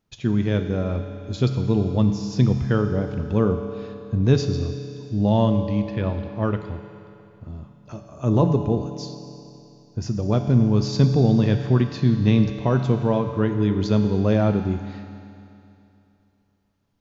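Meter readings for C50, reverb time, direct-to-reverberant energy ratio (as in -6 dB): 7.0 dB, 2.8 s, 6.0 dB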